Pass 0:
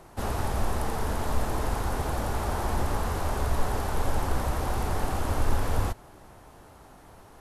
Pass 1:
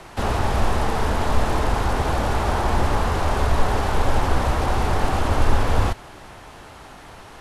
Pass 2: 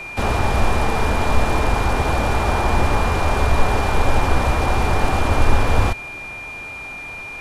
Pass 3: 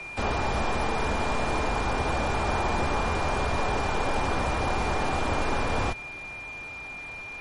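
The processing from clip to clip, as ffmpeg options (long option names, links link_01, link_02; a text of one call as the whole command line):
ffmpeg -i in.wav -filter_complex "[0:a]lowpass=11000,equalizer=frequency=2800:width=0.57:gain=9,acrossover=split=220|1200[link_01][link_02][link_03];[link_03]alimiter=level_in=9.5dB:limit=-24dB:level=0:latency=1:release=14,volume=-9.5dB[link_04];[link_01][link_02][link_04]amix=inputs=3:normalize=0,volume=7dB" out.wav
ffmpeg -i in.wav -af "aeval=exprs='val(0)+0.0224*sin(2*PI*2400*n/s)':channel_layout=same,volume=2.5dB" out.wav
ffmpeg -i in.wav -filter_complex "[0:a]acrossover=split=160|4400[link_01][link_02][link_03];[link_01]asoftclip=type=tanh:threshold=-20.5dB[link_04];[link_04][link_02][link_03]amix=inputs=3:normalize=0,volume=-6dB" -ar 48000 -c:a libmp3lame -b:a 40k out.mp3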